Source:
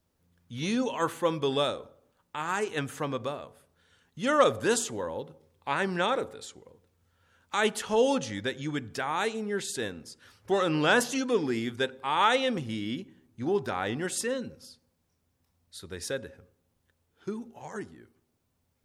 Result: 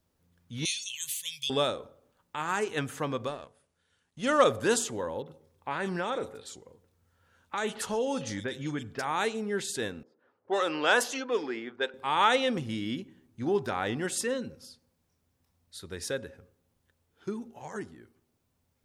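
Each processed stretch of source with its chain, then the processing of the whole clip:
0.65–1.5 inverse Chebyshev band-stop 210–1400 Hz + tilt +4 dB/oct
3.27–4.42 G.711 law mismatch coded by A + brick-wall FIR low-pass 11000 Hz + high shelf 8600 Hz +4 dB
5.22–9.05 compressor 2.5:1, threshold -28 dBFS + bands offset in time lows, highs 40 ms, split 2900 Hz
10.03–11.94 HPF 420 Hz + low-pass opened by the level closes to 590 Hz, open at -22.5 dBFS
whole clip: dry

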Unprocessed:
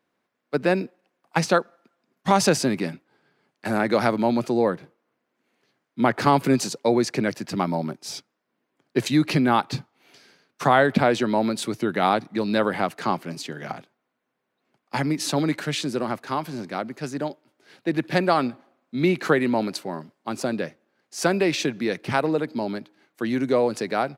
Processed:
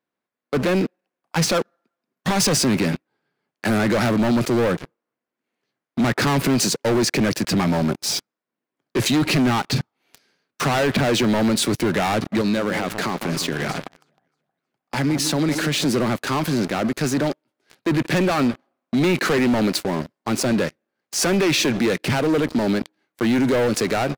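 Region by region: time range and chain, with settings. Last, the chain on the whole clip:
12.41–15.85 compressor 2:1, threshold -34 dBFS + echo with dull and thin repeats by turns 0.157 s, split 1000 Hz, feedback 55%, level -10 dB
whole clip: sample leveller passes 5; limiter -14.5 dBFS; dynamic EQ 840 Hz, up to -4 dB, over -34 dBFS, Q 1.5

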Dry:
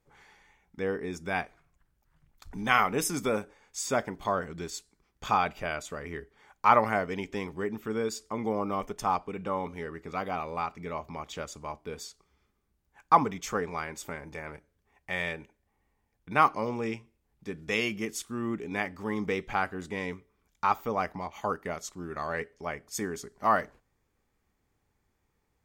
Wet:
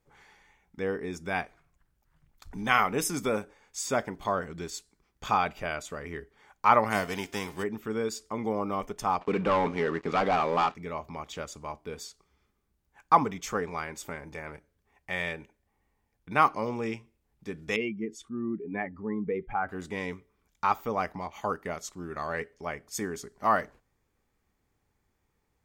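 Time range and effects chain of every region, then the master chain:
6.9–7.62 spectral whitening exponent 0.6 + HPF 41 Hz + de-hum 349.4 Hz, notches 31
9.21–10.75 HPF 160 Hz + sample leveller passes 3 + air absorption 77 m
17.76–19.69 spectral contrast raised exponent 1.7 + LPF 1800 Hz 6 dB/oct
whole clip: dry

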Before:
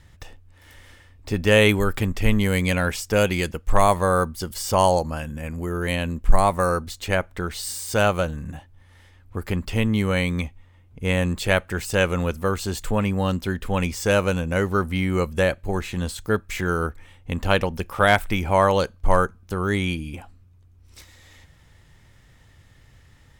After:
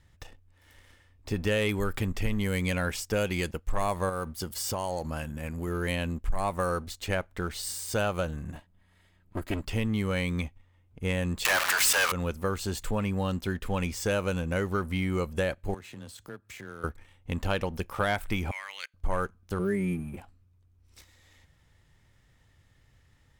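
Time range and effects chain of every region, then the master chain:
4.09–5.68 HPF 47 Hz + compressor, threshold -23 dBFS + high shelf 12000 Hz +4 dB
8.55–9.62 minimum comb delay 3.1 ms + notch 5700 Hz, Q 6
11.45–12.12 zero-crossing step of -22 dBFS + HPF 810 Hz 24 dB/oct + sample leveller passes 5
15.74–16.84 HPF 75 Hz + frequency shift +13 Hz + compressor 3:1, threshold -38 dBFS
18.51–18.94 level quantiser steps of 14 dB + resonant high-pass 2100 Hz, resonance Q 6.8
19.59–20.17 Butterworth band-stop 4200 Hz, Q 0.53 + band shelf 1000 Hz -11 dB 1.2 oct + comb 5.1 ms, depth 75%
whole clip: sample leveller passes 1; compressor 4:1, threshold -16 dBFS; gain -8 dB

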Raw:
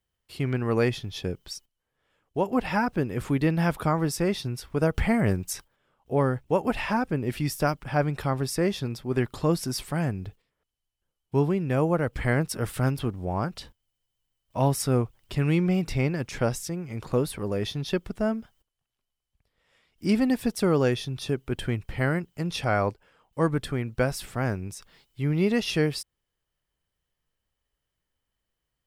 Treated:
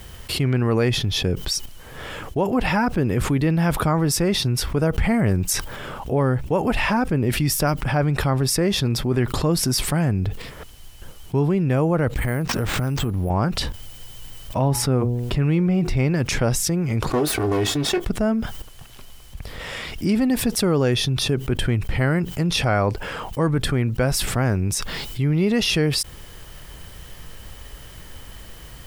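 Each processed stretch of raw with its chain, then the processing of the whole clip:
12.08–13.3 compressor, threshold -33 dBFS + careless resampling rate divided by 4×, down none, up hold
14.58–15.97 high shelf 3400 Hz -9.5 dB + de-hum 120.9 Hz, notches 8 + requantised 12-bit, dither triangular
17.1–18.06 minimum comb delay 2.7 ms + HPF 150 Hz 6 dB/oct + doubler 20 ms -11 dB
whole clip: low shelf 150 Hz +5 dB; fast leveller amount 70%

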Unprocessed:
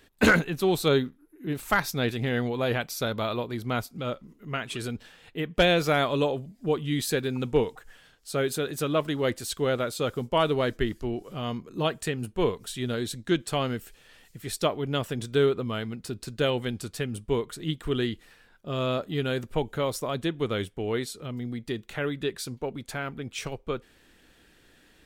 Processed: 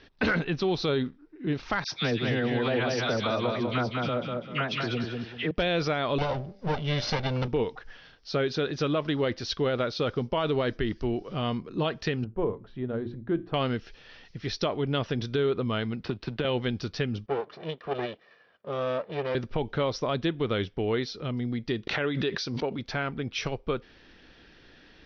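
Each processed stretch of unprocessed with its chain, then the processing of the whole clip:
1.84–5.51 HPF 90 Hz + dispersion lows, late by 82 ms, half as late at 1400 Hz + feedback echo 0.196 s, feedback 29%, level -5 dB
6.18–7.48 minimum comb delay 1.4 ms + high shelf 7400 Hz +8.5 dB + de-hum 195.8 Hz, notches 4
12.24–13.54 LPF 1000 Hz + notches 60/120/180/240/300/360 Hz + resonator 110 Hz, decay 0.3 s, mix 40%
16.03–16.45 G.711 law mismatch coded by A + resonant high shelf 4100 Hz -7 dB, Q 1.5 + three-band squash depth 100%
17.26–19.35 minimum comb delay 1.7 ms + HPF 280 Hz + tape spacing loss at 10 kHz 28 dB
21.87–22.79 HPF 170 Hz 6 dB/oct + high shelf 8000 Hz +4.5 dB + backwards sustainer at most 58 dB/s
whole clip: steep low-pass 5800 Hz 96 dB/oct; limiter -19 dBFS; compressor 1.5:1, threshold -33 dBFS; gain +4.5 dB

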